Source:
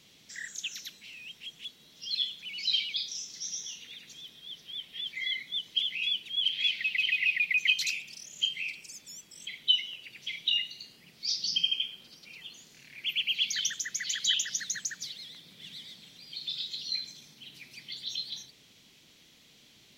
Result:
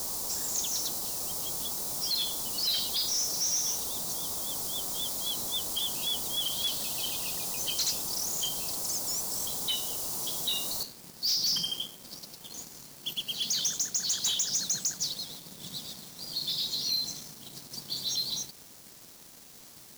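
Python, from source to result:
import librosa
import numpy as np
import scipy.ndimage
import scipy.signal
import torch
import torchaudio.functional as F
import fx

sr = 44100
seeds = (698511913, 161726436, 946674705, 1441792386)

y = fx.noise_floor_step(x, sr, seeds[0], at_s=10.83, before_db=-46, after_db=-59, tilt_db=0.0)
y = scipy.signal.sosfilt(scipy.signal.cheby1(2, 1.0, [910.0, 5100.0], 'bandstop', fs=sr, output='sos'), y)
y = fx.leveller(y, sr, passes=5)
y = y * 10.0 ** (-5.0 / 20.0)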